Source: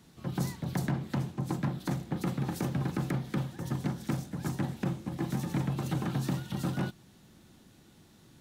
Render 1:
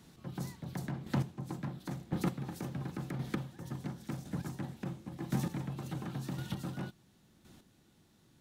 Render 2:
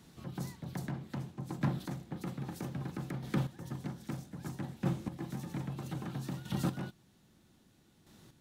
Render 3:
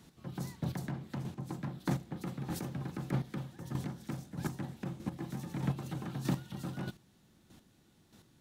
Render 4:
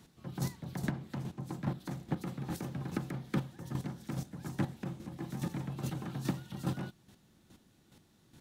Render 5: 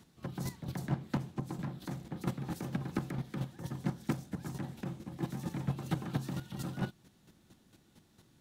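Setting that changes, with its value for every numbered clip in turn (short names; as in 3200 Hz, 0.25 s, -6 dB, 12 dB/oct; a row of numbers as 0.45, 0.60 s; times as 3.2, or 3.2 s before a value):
chopper, rate: 0.94, 0.62, 1.6, 2.4, 4.4 Hz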